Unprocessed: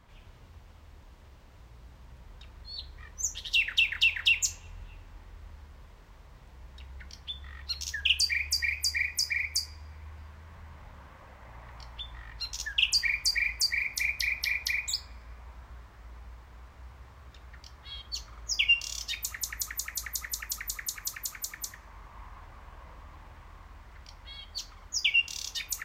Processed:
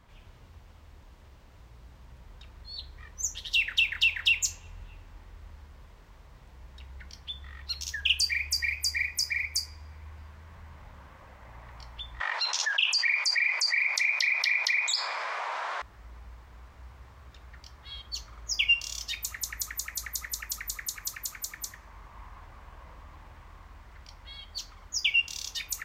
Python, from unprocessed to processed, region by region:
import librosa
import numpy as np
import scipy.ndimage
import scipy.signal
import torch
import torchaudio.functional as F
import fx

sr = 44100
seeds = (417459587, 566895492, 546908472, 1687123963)

y = fx.chain(x, sr, fx.highpass(hz=600.0, slope=24),
    fx.air_absorb(metres=95.0),
    fx.env_flatten(amount_pct=70), at=(12.2, 15.82))